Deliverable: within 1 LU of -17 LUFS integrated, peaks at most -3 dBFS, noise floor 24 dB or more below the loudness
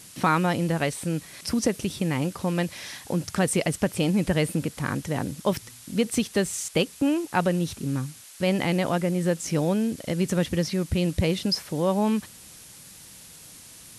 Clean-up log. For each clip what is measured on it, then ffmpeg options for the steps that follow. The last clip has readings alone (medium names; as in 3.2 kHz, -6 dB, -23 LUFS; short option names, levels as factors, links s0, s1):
noise floor -47 dBFS; noise floor target -50 dBFS; loudness -26.0 LUFS; peak level -9.5 dBFS; loudness target -17.0 LUFS
-> -af "afftdn=nr=6:nf=-47"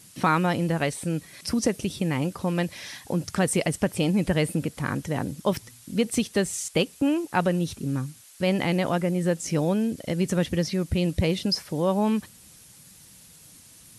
noise floor -51 dBFS; loudness -26.0 LUFS; peak level -9.5 dBFS; loudness target -17.0 LUFS
-> -af "volume=2.82,alimiter=limit=0.708:level=0:latency=1"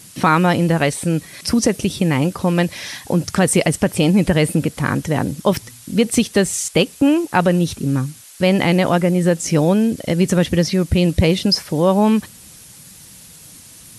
loudness -17.5 LUFS; peak level -3.0 dBFS; noise floor -42 dBFS